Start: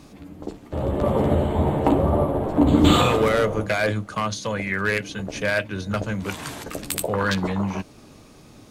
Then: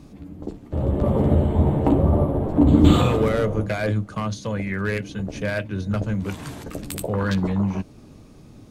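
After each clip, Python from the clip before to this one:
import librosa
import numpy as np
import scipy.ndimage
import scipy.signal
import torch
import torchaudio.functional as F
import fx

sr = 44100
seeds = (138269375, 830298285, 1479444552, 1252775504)

y = fx.low_shelf(x, sr, hz=410.0, db=11.5)
y = y * 10.0 ** (-6.5 / 20.0)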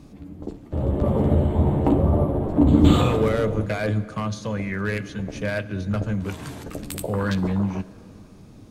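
y = fx.rev_plate(x, sr, seeds[0], rt60_s=2.7, hf_ratio=0.75, predelay_ms=0, drr_db=15.5)
y = y * 10.0 ** (-1.0 / 20.0)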